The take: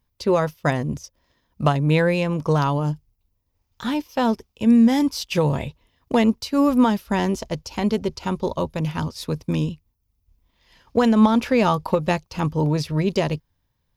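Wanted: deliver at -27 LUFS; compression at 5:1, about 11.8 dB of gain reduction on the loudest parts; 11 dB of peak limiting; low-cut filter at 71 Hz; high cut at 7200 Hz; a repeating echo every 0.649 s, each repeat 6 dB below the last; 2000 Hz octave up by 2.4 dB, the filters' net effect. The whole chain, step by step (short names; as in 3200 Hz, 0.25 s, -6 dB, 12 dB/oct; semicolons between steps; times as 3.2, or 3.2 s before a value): HPF 71 Hz; LPF 7200 Hz; bell 2000 Hz +3 dB; compressor 5:1, threshold -25 dBFS; limiter -23 dBFS; feedback echo 0.649 s, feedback 50%, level -6 dB; gain +5 dB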